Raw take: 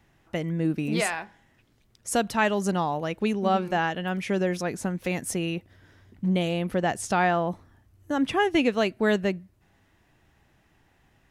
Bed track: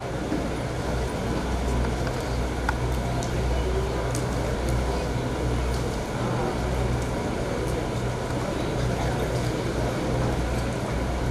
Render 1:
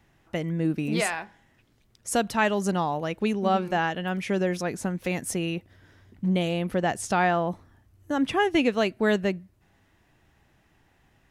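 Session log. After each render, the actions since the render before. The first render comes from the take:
no processing that can be heard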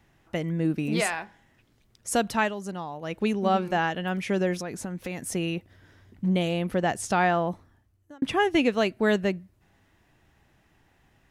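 0:02.38–0:03.16: duck −9 dB, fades 0.16 s
0:04.54–0:05.32: downward compressor 3 to 1, threshold −30 dBFS
0:07.45–0:08.22: fade out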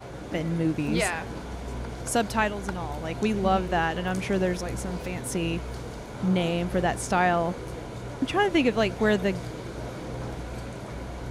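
mix in bed track −9.5 dB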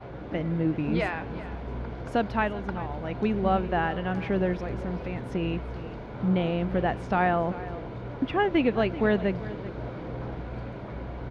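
high-frequency loss of the air 330 metres
single-tap delay 386 ms −16 dB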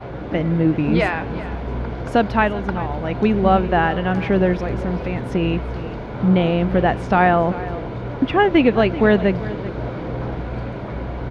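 level +9 dB
brickwall limiter −3 dBFS, peak gain reduction 1 dB

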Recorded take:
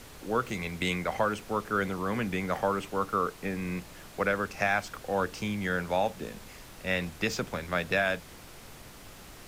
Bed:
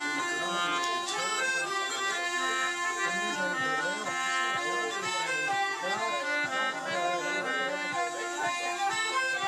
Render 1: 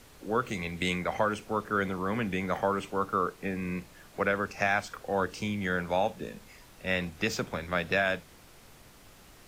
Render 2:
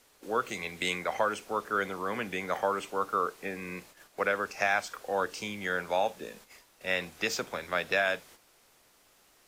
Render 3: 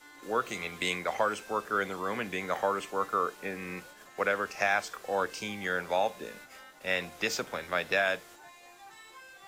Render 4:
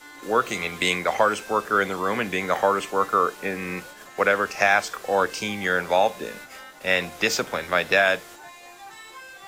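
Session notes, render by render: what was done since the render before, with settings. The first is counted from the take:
noise reduction from a noise print 6 dB
bass and treble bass −13 dB, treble +3 dB; noise gate −52 dBFS, range −8 dB
mix in bed −22 dB
level +8.5 dB

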